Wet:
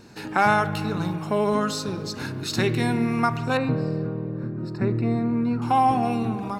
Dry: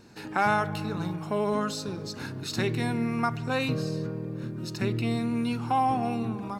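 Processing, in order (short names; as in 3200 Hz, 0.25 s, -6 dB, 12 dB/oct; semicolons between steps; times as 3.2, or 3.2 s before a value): 3.57–5.62 running mean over 14 samples; reverb RT60 2.0 s, pre-delay 37 ms, DRR 14 dB; gain +5 dB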